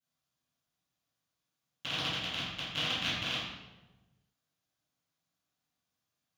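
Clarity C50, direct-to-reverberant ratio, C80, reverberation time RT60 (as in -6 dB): -1.0 dB, -19.0 dB, 2.5 dB, 1.1 s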